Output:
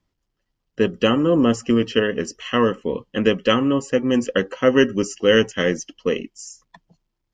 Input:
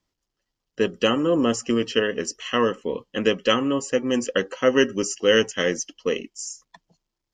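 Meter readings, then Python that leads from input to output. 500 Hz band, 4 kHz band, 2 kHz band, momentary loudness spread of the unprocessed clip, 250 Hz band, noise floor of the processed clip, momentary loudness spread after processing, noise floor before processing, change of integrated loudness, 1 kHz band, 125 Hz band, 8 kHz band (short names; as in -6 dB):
+2.5 dB, 0.0 dB, +1.5 dB, 10 LU, +5.0 dB, -78 dBFS, 11 LU, -83 dBFS, +3.0 dB, +2.0 dB, +7.0 dB, -4.0 dB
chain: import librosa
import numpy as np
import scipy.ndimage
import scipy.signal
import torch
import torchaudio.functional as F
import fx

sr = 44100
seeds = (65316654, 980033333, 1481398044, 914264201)

y = fx.bass_treble(x, sr, bass_db=6, treble_db=-7)
y = F.gain(torch.from_numpy(y), 2.0).numpy()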